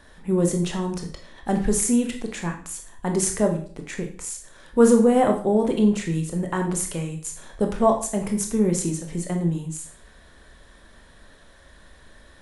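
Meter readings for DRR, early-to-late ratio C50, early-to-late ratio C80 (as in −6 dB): 3.0 dB, 8.5 dB, 12.5 dB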